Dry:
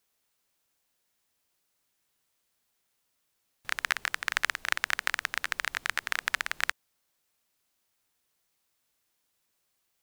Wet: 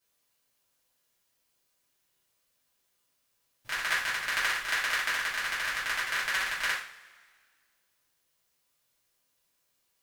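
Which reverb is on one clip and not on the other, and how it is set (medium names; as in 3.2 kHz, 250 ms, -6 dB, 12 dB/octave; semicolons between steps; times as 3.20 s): two-slope reverb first 0.46 s, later 1.8 s, from -20 dB, DRR -10 dB; trim -9 dB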